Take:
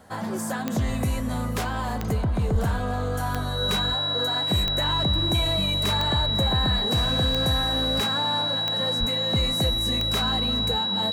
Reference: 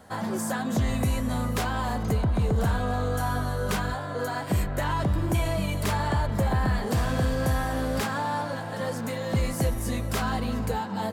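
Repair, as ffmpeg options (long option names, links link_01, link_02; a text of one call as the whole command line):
ffmpeg -i in.wav -filter_complex "[0:a]adeclick=threshold=4,bandreject=frequency=3900:width=30,asplit=3[link_01][link_02][link_03];[link_01]afade=type=out:start_time=2.52:duration=0.02[link_04];[link_02]highpass=frequency=140:width=0.5412,highpass=frequency=140:width=1.3066,afade=type=in:start_time=2.52:duration=0.02,afade=type=out:start_time=2.64:duration=0.02[link_05];[link_03]afade=type=in:start_time=2.64:duration=0.02[link_06];[link_04][link_05][link_06]amix=inputs=3:normalize=0,asplit=3[link_07][link_08][link_09];[link_07]afade=type=out:start_time=8.99:duration=0.02[link_10];[link_08]highpass=frequency=140:width=0.5412,highpass=frequency=140:width=1.3066,afade=type=in:start_time=8.99:duration=0.02,afade=type=out:start_time=9.11:duration=0.02[link_11];[link_09]afade=type=in:start_time=9.11:duration=0.02[link_12];[link_10][link_11][link_12]amix=inputs=3:normalize=0" out.wav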